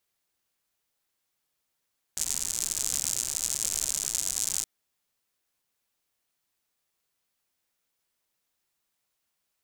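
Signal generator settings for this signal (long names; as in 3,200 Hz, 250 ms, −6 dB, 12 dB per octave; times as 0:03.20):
rain-like ticks over hiss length 2.47 s, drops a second 110, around 7,200 Hz, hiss −17 dB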